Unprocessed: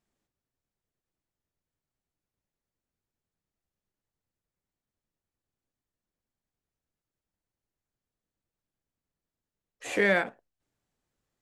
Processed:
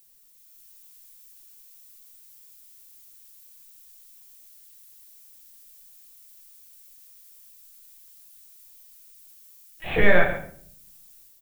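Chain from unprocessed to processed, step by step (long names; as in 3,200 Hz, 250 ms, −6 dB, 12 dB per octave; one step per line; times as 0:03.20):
linear-prediction vocoder at 8 kHz pitch kept
pitch vibrato 0.53 Hz 12 cents
rectangular room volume 64 cubic metres, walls mixed, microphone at 0.63 metres
background noise violet −58 dBFS
automatic gain control gain up to 6.5 dB
single-tap delay 137 ms −13.5 dB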